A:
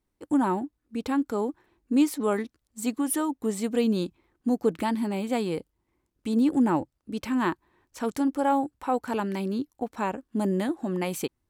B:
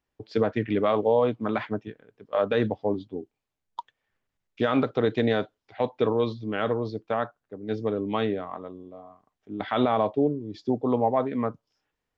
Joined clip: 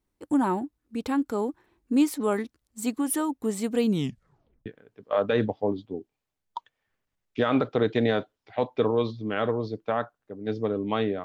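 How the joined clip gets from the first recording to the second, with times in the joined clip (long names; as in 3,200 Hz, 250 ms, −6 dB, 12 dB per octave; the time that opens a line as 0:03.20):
A
0:03.87: tape stop 0.79 s
0:04.66: continue with B from 0:01.88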